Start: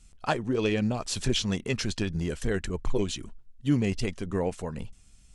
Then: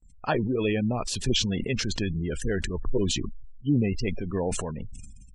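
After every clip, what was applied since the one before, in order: spectral gate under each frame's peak -25 dB strong; gate with hold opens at -51 dBFS; sustainer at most 33 dB/s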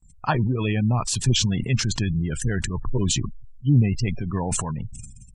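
graphic EQ 125/500/1000/8000 Hz +11/-7/+9/+9 dB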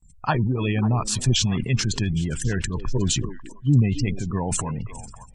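delay with a stepping band-pass 0.273 s, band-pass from 340 Hz, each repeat 1.4 oct, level -9 dB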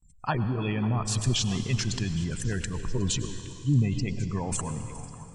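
reverb RT60 3.1 s, pre-delay 88 ms, DRR 9.5 dB; gain -5.5 dB

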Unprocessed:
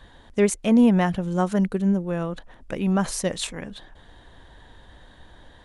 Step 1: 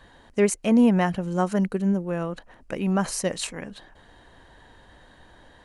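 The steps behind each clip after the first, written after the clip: low shelf 110 Hz -7.5 dB; notch 3500 Hz, Q 7.4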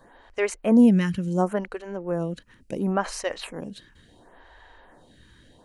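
photocell phaser 0.71 Hz; gain +2.5 dB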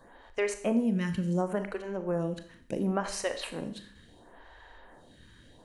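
compressor 6:1, threshold -23 dBFS, peak gain reduction 11 dB; Schroeder reverb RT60 0.58 s, combs from 27 ms, DRR 8.5 dB; gain -2 dB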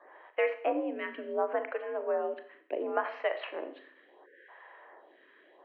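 spectral delete 4.26–4.49, 500–1400 Hz; mistuned SSB +64 Hz 310–2700 Hz; gain +1.5 dB

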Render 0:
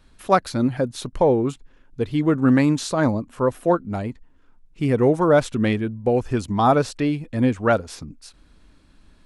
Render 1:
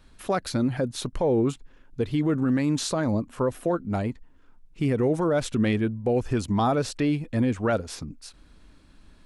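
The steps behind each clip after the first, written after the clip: dynamic EQ 1000 Hz, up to -4 dB, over -29 dBFS, Q 1.3; limiter -15.5 dBFS, peak gain reduction 9 dB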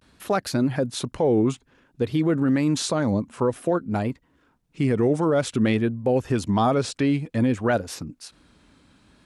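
vibrato 0.54 Hz 81 cents; HPF 88 Hz 12 dB/oct; gain +2.5 dB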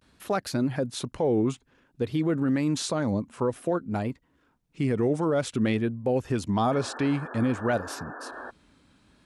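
painted sound noise, 6.71–8.51, 230–1800 Hz -36 dBFS; gain -4 dB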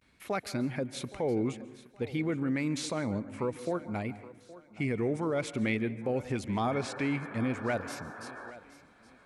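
bell 2200 Hz +12.5 dB 0.3 oct; thinning echo 0.819 s, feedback 33%, high-pass 180 Hz, level -17.5 dB; on a send at -15.5 dB: reverb RT60 0.85 s, pre-delay 0.128 s; on the sum: gain -6 dB

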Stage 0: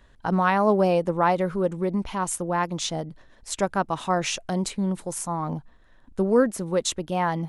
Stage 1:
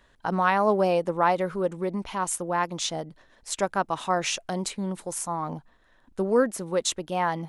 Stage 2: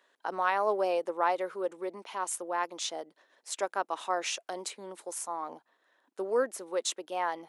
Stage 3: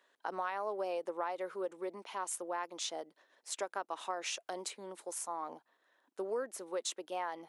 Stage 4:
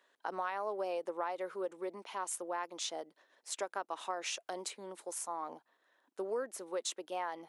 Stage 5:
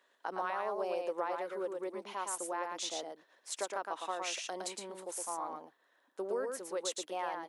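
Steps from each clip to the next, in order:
low shelf 230 Hz -9 dB
HPF 330 Hz 24 dB/oct; gain -5.5 dB
compressor 6:1, threshold -30 dBFS, peak gain reduction 8.5 dB; gain -3 dB
nothing audible
echo 0.113 s -4 dB

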